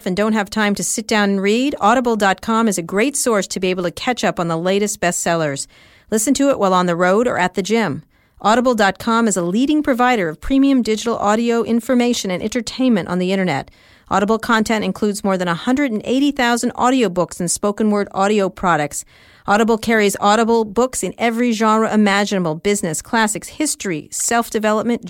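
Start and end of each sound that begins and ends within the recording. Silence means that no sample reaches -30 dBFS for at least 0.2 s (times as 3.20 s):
6.12–8.00 s
8.42–13.68 s
14.11–19.02 s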